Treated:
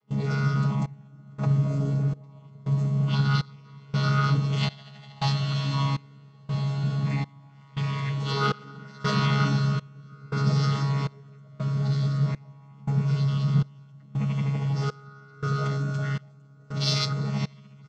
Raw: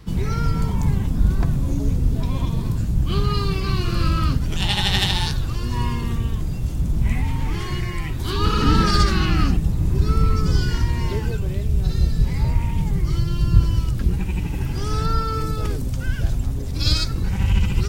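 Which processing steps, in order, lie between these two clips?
vocoder on a held chord bare fifth, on C#3; on a send: echo that smears into a reverb 640 ms, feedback 70%, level -12.5 dB; on the sum: trance gate ".xxxxxxx...." 141 bpm -24 dB; resonant low shelf 380 Hz -7 dB, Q 1.5; comb 6.3 ms, depth 90%; in parallel at -10 dB: hard clipper -29.5 dBFS, distortion -8 dB; on the sum: dynamic bell 4.5 kHz, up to +7 dB, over -54 dBFS, Q 1.3; trim +1.5 dB

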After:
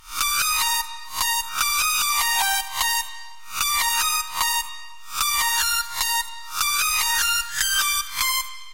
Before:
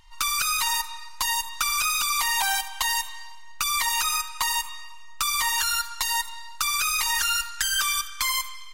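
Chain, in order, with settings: reverse spectral sustain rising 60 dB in 0.34 s; trim +2 dB

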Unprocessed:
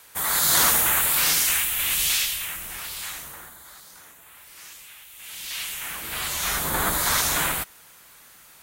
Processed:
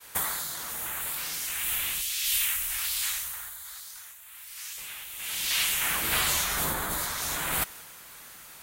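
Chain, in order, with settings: 2.01–4.78 s: amplifier tone stack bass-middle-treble 10-0-10; expander -47 dBFS; compressor with a negative ratio -30 dBFS, ratio -1

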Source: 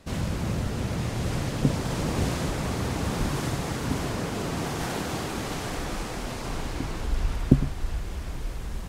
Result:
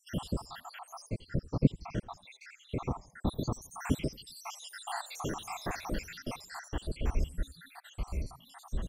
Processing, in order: random holes in the spectrogram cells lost 83%; 1.09–3.27 s: tape spacing loss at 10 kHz 23 dB; frequency-shifting echo 84 ms, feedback 45%, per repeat -100 Hz, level -20.5 dB

